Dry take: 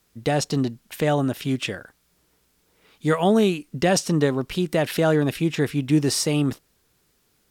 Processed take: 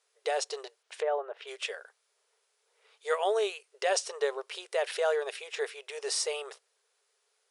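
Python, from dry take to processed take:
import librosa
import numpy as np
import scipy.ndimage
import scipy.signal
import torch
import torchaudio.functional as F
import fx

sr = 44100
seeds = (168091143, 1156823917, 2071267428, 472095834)

y = fx.env_lowpass_down(x, sr, base_hz=1300.0, full_db=-20.5, at=(0.82, 1.46), fade=0.02)
y = fx.brickwall_bandpass(y, sr, low_hz=390.0, high_hz=11000.0)
y = F.gain(torch.from_numpy(y), -6.5).numpy()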